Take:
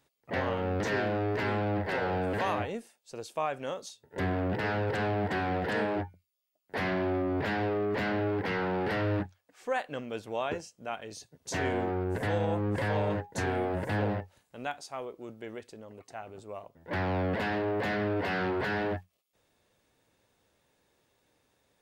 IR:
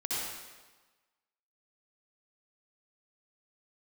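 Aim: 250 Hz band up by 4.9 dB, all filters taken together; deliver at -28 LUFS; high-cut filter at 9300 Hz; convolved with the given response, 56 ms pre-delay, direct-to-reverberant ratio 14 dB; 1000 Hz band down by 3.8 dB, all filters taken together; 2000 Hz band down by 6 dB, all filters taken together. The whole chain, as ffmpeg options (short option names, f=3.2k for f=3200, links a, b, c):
-filter_complex "[0:a]lowpass=9.3k,equalizer=f=250:t=o:g=7,equalizer=f=1k:t=o:g=-5,equalizer=f=2k:t=o:g=-6,asplit=2[a][b];[1:a]atrim=start_sample=2205,adelay=56[c];[b][c]afir=irnorm=-1:irlink=0,volume=-19.5dB[d];[a][d]amix=inputs=2:normalize=0,volume=2.5dB"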